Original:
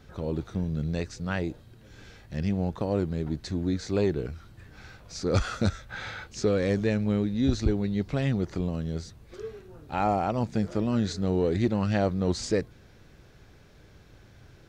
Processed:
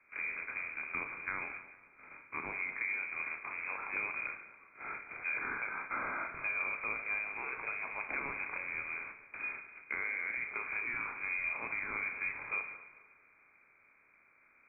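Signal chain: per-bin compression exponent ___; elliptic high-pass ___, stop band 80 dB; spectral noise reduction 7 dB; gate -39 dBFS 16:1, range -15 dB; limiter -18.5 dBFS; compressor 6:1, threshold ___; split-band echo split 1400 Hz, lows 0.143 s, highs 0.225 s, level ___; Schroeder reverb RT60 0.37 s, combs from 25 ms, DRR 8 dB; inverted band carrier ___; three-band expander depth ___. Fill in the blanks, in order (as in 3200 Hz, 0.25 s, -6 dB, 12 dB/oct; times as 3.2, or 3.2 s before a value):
0.4, 490 Hz, -35 dBFS, -11.5 dB, 2900 Hz, 40%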